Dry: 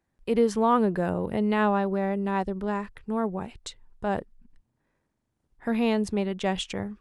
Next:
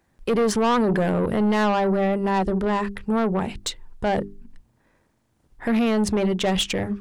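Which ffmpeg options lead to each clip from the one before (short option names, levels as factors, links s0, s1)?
-filter_complex "[0:a]bandreject=f=50:t=h:w=6,bandreject=f=100:t=h:w=6,bandreject=f=150:t=h:w=6,bandreject=f=200:t=h:w=6,bandreject=f=250:t=h:w=6,bandreject=f=300:t=h:w=6,bandreject=f=350:t=h:w=6,bandreject=f=400:t=h:w=6,asplit=2[s0][s1];[s1]alimiter=limit=0.0794:level=0:latency=1:release=24,volume=1.26[s2];[s0][s2]amix=inputs=2:normalize=0,asoftclip=type=tanh:threshold=0.0841,volume=1.78"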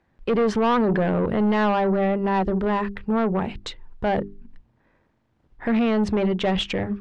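-af "lowpass=3400"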